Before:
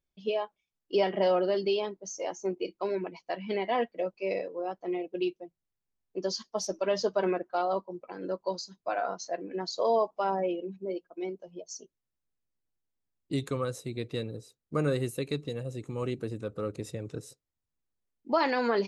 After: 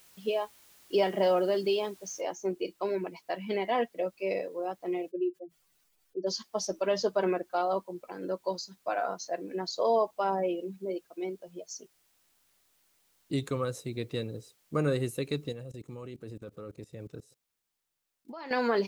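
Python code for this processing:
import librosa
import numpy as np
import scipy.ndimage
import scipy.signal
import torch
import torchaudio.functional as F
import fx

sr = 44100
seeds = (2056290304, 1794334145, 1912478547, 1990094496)

y = fx.noise_floor_step(x, sr, seeds[0], at_s=2.21, before_db=-59, after_db=-70, tilt_db=0.0)
y = fx.spec_expand(y, sr, power=1.9, at=(5.09, 6.26), fade=0.02)
y = fx.level_steps(y, sr, step_db=21, at=(15.52, 18.51))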